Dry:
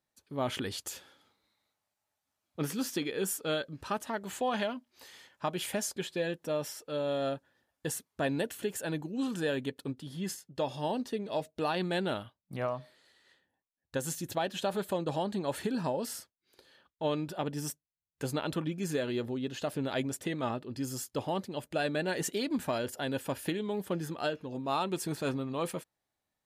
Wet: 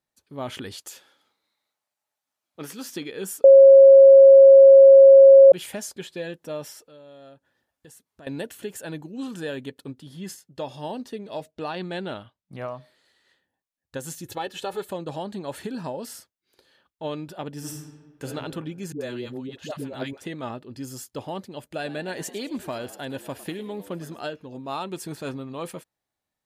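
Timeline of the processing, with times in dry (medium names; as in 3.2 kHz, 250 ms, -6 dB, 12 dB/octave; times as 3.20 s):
0.75–2.89 s: high-pass 340 Hz 6 dB/octave
3.44–5.52 s: bleep 544 Hz -6 dBFS
6.83–8.27 s: compression 2:1, threshold -57 dBFS
11.51–12.57 s: Bessel low-pass 6.6 kHz
14.25–14.89 s: comb 2.3 ms
17.57–18.26 s: reverb throw, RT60 1.4 s, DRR -1 dB
18.92–20.22 s: phase dispersion highs, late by 88 ms, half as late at 510 Hz
21.63–24.22 s: frequency-shifting echo 106 ms, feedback 47%, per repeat +80 Hz, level -16 dB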